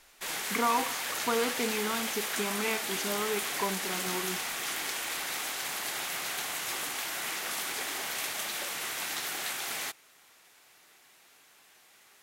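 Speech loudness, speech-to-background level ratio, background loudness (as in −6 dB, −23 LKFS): −33.5 LKFS, −1.0 dB, −32.5 LKFS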